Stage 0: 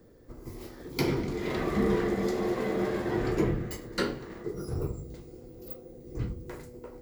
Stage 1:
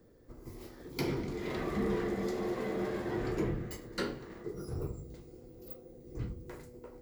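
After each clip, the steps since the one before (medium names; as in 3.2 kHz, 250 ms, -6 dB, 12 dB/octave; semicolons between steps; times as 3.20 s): saturation -17.5 dBFS, distortion -23 dB; trim -5 dB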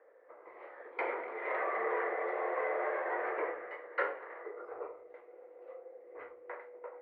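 elliptic band-pass 520–2100 Hz, stop band 50 dB; trim +8 dB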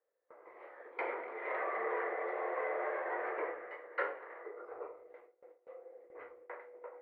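gate with hold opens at -45 dBFS; trim -2.5 dB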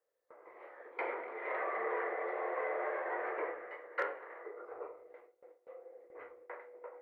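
hard clipper -23.5 dBFS, distortion -40 dB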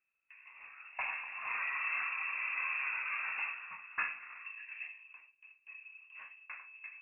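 frequency inversion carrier 3.1 kHz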